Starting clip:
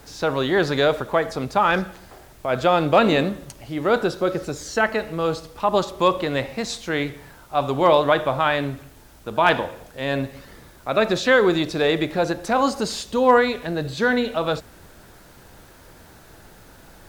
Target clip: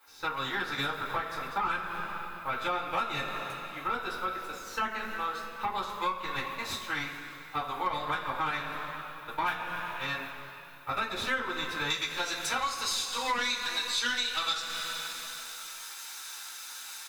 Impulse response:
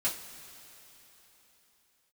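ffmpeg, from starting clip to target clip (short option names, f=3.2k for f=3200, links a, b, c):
-filter_complex "[0:a]highpass=1.3k,aecho=1:1:0.8:0.35,aeval=exprs='0.562*(cos(1*acos(clip(val(0)/0.562,-1,1)))-cos(1*PI/2))+0.0631*(cos(3*acos(clip(val(0)/0.562,-1,1)))-cos(3*PI/2))+0.0224*(cos(6*acos(clip(val(0)/0.562,-1,1)))-cos(6*PI/2))+0.0501*(cos(8*acos(clip(val(0)/0.562,-1,1)))-cos(8*PI/2))':c=same,asetnsamples=n=441:p=0,asendcmd='11.9 equalizer g 2;13.4 equalizer g 10.5',equalizer=f=6.2k:t=o:w=2.4:g=-14,agate=range=-6dB:threshold=-50dB:ratio=16:detection=peak[a];[1:a]atrim=start_sample=2205,asetrate=61740,aresample=44100[b];[a][b]afir=irnorm=-1:irlink=0,acompressor=threshold=-35dB:ratio=4,volume=5.5dB"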